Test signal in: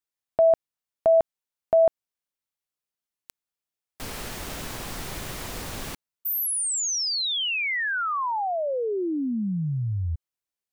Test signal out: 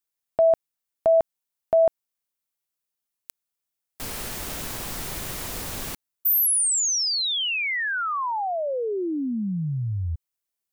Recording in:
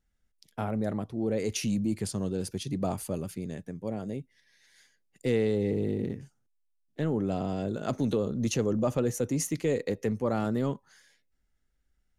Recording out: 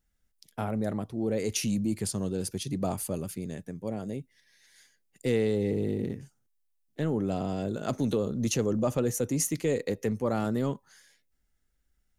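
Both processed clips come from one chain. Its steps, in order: high shelf 7600 Hz +8 dB

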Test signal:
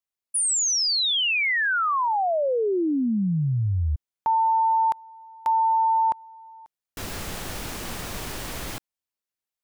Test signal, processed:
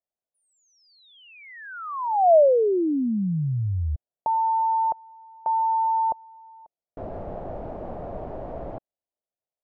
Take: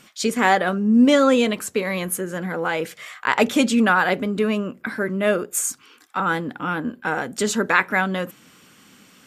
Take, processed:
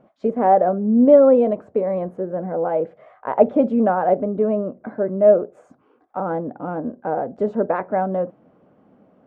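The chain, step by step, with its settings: synth low-pass 650 Hz, resonance Q 3.8; gain -2 dB

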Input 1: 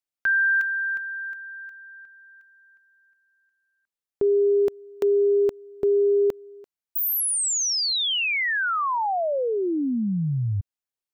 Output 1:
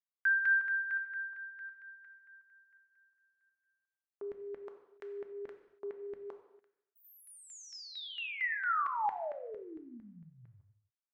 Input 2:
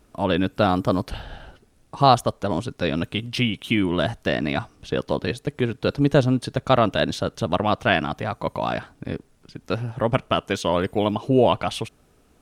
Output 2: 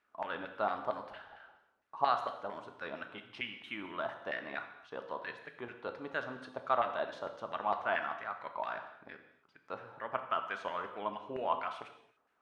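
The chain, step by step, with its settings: LFO band-pass saw down 4.4 Hz 820–1900 Hz; non-linear reverb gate 0.31 s falling, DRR 6 dB; gain -6.5 dB

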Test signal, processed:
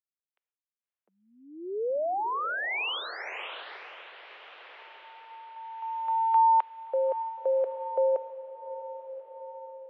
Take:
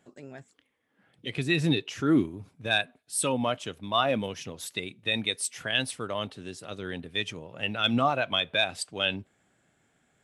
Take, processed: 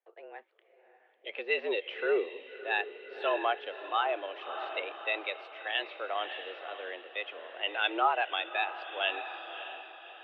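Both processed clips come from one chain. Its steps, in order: gate with hold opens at -57 dBFS; diffused feedback echo 0.596 s, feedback 58%, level -11 dB; mistuned SSB +99 Hz 330–3000 Hz; tremolo triangle 0.67 Hz, depth 40%

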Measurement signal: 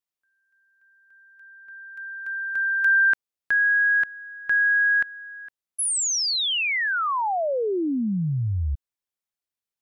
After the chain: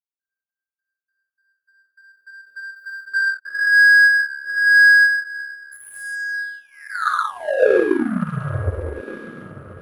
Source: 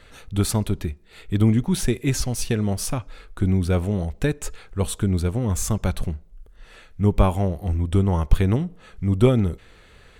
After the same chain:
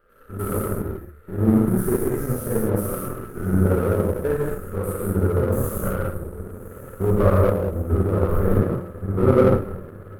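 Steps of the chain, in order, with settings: stepped spectrum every 0.1 s; EQ curve 240 Hz 0 dB, 540 Hz +11 dB, 840 Hz -14 dB, 1300 Hz +14 dB, 2800 Hz -26 dB, 4600 Hz -24 dB, 7500 Hz -14 dB, 12000 Hz +10 dB; in parallel at -1.5 dB: limiter -17 dBFS; on the sum: diffused feedback echo 1.196 s, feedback 45%, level -11.5 dB; non-linear reverb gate 0.25 s flat, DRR -5.5 dB; power-law curve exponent 1.4; gain -5.5 dB

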